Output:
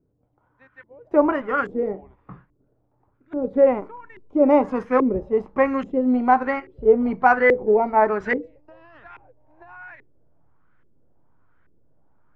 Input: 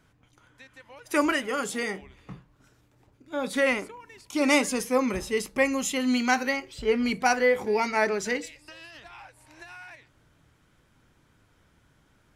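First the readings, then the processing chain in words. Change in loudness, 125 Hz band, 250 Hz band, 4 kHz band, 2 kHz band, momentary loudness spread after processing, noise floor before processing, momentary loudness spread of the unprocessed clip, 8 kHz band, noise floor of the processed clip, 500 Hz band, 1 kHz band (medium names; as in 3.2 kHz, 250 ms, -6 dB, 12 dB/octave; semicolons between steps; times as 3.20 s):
+5.5 dB, +3.5 dB, +5.0 dB, under -15 dB, +0.5 dB, 10 LU, -64 dBFS, 21 LU, under -30 dB, -67 dBFS, +7.5 dB, +8.0 dB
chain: gate -50 dBFS, range -6 dB; in parallel at -4 dB: hysteresis with a dead band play -23 dBFS; on the sum: LFO low-pass saw up 1.2 Hz 370–1800 Hz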